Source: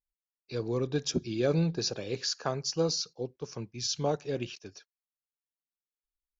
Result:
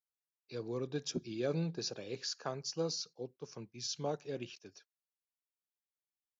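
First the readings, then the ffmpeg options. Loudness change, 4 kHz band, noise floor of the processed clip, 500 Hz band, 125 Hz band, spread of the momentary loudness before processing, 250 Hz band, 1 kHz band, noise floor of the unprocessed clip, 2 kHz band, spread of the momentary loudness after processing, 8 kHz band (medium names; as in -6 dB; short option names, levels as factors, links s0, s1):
-8.0 dB, -7.5 dB, under -85 dBFS, -7.5 dB, -9.0 dB, 12 LU, -8.0 dB, -7.5 dB, under -85 dBFS, -7.5 dB, 12 LU, no reading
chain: -af "highpass=120,volume=0.422"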